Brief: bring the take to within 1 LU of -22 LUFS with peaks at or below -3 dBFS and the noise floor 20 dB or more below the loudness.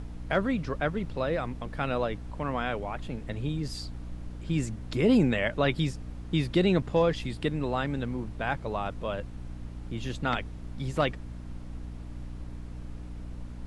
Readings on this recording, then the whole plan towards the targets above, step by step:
hum 60 Hz; harmonics up to 300 Hz; hum level -38 dBFS; noise floor -41 dBFS; noise floor target -50 dBFS; loudness -30.0 LUFS; peak -12.0 dBFS; loudness target -22.0 LUFS
-> notches 60/120/180/240/300 Hz; noise print and reduce 9 dB; gain +8 dB

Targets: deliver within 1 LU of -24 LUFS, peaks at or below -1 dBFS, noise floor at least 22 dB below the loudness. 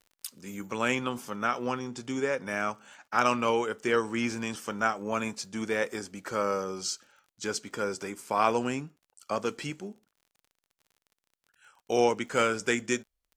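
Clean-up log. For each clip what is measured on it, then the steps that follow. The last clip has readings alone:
ticks 34/s; loudness -30.0 LUFS; peak -9.5 dBFS; loudness target -24.0 LUFS
-> de-click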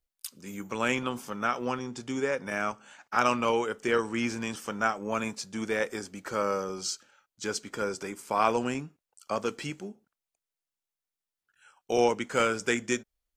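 ticks 0/s; loudness -30.5 LUFS; peak -9.5 dBFS; loudness target -24.0 LUFS
-> gain +6.5 dB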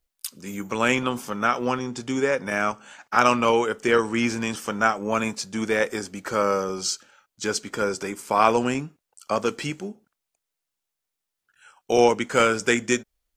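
loudness -24.0 LUFS; peak -3.0 dBFS; noise floor -84 dBFS

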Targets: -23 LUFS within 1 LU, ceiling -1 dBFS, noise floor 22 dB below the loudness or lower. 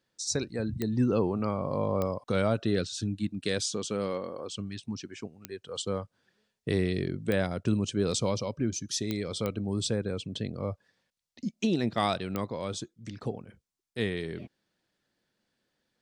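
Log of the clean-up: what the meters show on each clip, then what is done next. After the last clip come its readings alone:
clicks 7; loudness -31.5 LUFS; peak -14.0 dBFS; loudness target -23.0 LUFS
-> de-click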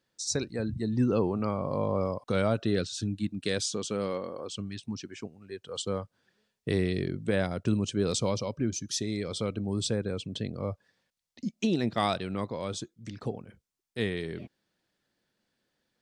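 clicks 0; loudness -31.5 LUFS; peak -14.0 dBFS; loudness target -23.0 LUFS
-> gain +8.5 dB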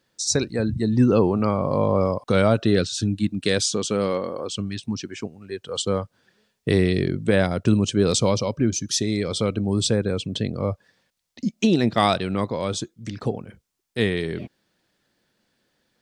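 loudness -23.0 LUFS; peak -5.5 dBFS; noise floor -73 dBFS

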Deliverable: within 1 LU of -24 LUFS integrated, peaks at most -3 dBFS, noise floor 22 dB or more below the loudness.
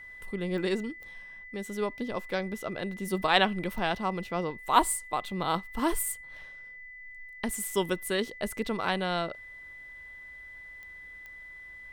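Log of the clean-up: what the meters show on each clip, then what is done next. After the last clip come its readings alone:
clicks 5; steady tone 2000 Hz; tone level -44 dBFS; loudness -30.5 LUFS; peak -7.0 dBFS; loudness target -24.0 LUFS
-> de-click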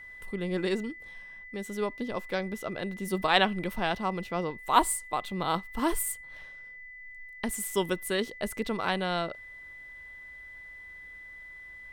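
clicks 0; steady tone 2000 Hz; tone level -44 dBFS
-> notch 2000 Hz, Q 30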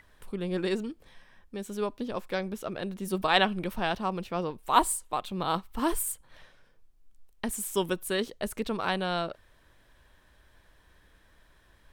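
steady tone none; loudness -30.5 LUFS; peak -7.5 dBFS; loudness target -24.0 LUFS
-> gain +6.5 dB; limiter -3 dBFS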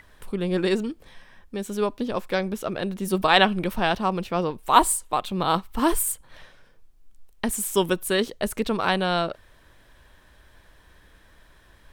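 loudness -24.5 LUFS; peak -3.0 dBFS; noise floor -56 dBFS

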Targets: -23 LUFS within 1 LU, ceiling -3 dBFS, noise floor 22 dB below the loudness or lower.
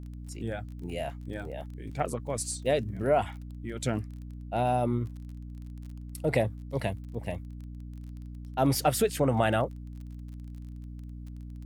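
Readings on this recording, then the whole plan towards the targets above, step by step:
ticks 28/s; hum 60 Hz; harmonics up to 300 Hz; hum level -38 dBFS; loudness -30.5 LUFS; peak -11.0 dBFS; loudness target -23.0 LUFS
-> de-click; notches 60/120/180/240/300 Hz; gain +7.5 dB

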